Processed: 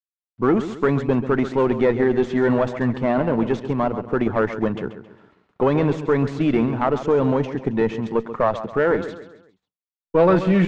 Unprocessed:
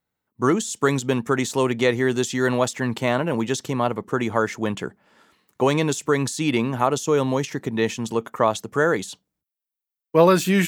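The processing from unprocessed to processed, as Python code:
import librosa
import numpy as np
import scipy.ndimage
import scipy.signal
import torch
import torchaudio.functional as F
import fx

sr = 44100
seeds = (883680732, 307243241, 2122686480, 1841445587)

p1 = fx.cvsd(x, sr, bps=64000)
p2 = fx.level_steps(p1, sr, step_db=12)
p3 = p1 + (p2 * 10.0 ** (1.0 / 20.0))
p4 = fx.quant_dither(p3, sr, seeds[0], bits=10, dither='none')
p5 = p4 + fx.echo_feedback(p4, sr, ms=135, feedback_pct=40, wet_db=-12.0, dry=0)
p6 = fx.cheby_harmonics(p5, sr, harmonics=(4,), levels_db=(-18,), full_scale_db=-1.0)
y = fx.spacing_loss(p6, sr, db_at_10k=38)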